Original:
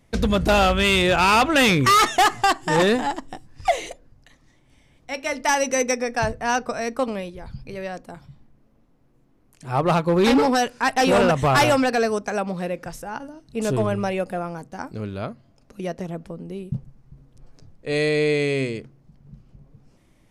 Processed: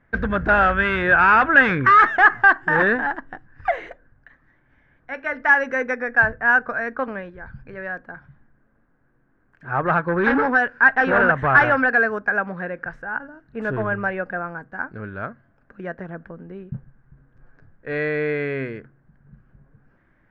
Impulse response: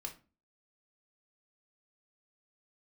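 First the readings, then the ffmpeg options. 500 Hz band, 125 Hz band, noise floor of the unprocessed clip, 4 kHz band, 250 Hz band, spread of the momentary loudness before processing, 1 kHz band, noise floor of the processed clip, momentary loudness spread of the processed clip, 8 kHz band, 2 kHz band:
−3.0 dB, −4.0 dB, −59 dBFS, below −10 dB, −4.0 dB, 18 LU, +1.5 dB, −62 dBFS, 21 LU, below −25 dB, +8.5 dB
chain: -af "lowpass=frequency=1600:width_type=q:width=9.1,volume=-4dB"

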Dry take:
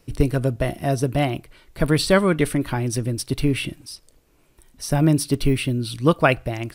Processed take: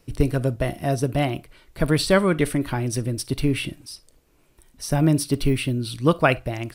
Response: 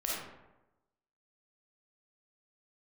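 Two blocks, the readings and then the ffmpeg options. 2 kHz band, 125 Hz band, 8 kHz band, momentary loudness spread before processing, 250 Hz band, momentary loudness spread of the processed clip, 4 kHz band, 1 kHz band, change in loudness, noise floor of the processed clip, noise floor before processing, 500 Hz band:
−1.0 dB, −1.5 dB, −1.0 dB, 11 LU, −1.0 dB, 11 LU, −1.0 dB, −1.5 dB, −1.0 dB, −61 dBFS, −59 dBFS, −1.0 dB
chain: -filter_complex "[0:a]asplit=2[link_01][link_02];[1:a]atrim=start_sample=2205,atrim=end_sample=3087[link_03];[link_02][link_03]afir=irnorm=-1:irlink=0,volume=-19.5dB[link_04];[link_01][link_04]amix=inputs=2:normalize=0,volume=-2dB"

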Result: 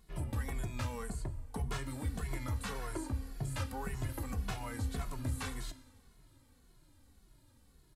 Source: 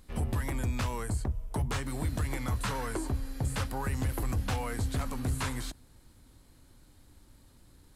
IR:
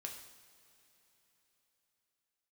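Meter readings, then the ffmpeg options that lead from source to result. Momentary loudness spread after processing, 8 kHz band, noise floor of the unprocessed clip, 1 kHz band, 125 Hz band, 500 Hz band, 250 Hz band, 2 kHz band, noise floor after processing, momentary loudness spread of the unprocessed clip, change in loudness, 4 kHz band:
3 LU, −6.0 dB, −59 dBFS, −6.5 dB, −6.0 dB, −6.0 dB, −6.0 dB, −6.0 dB, −65 dBFS, 3 LU, −6.0 dB, −6.0 dB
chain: -filter_complex "[0:a]asplit=2[link_01][link_02];[1:a]atrim=start_sample=2205[link_03];[link_02][link_03]afir=irnorm=-1:irlink=0,volume=-3dB[link_04];[link_01][link_04]amix=inputs=2:normalize=0,asplit=2[link_05][link_06];[link_06]adelay=2.3,afreqshift=-1.8[link_07];[link_05][link_07]amix=inputs=2:normalize=1,volume=-6dB"

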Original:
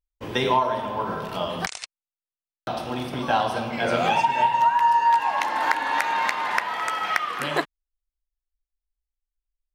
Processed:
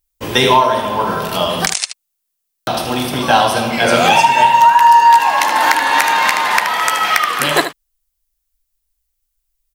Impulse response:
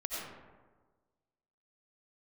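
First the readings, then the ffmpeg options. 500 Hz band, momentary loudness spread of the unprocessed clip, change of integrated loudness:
+10.0 dB, 11 LU, +11.0 dB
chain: -af "crystalizer=i=2.5:c=0,aecho=1:1:76:0.282,apsyclip=11.5dB,volume=-2dB"

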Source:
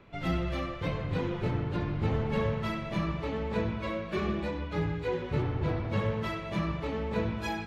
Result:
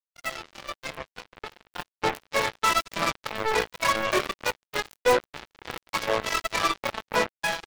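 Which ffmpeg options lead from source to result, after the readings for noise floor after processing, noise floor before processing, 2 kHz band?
below −85 dBFS, −39 dBFS, +10.5 dB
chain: -filter_complex "[0:a]lowpass=frequency=1400:poles=1,aecho=1:1:188|376:0.1|0.026,afftdn=noise_reduction=17:noise_floor=-41,aphaser=in_gain=1:out_gain=1:delay=2.5:decay=0.58:speed=0.97:type=sinusoidal,asplit=2[link_01][link_02];[link_02]acompressor=threshold=-33dB:ratio=16,volume=-0.5dB[link_03];[link_01][link_03]amix=inputs=2:normalize=0,crystalizer=i=8.5:c=0,highpass=690,flanger=delay=19:depth=2.9:speed=0.35,acrusher=bits=4:mix=0:aa=0.5,dynaudnorm=framelen=760:gausssize=5:maxgain=11dB,volume=16.5dB,asoftclip=hard,volume=-16.5dB,volume=1.5dB"

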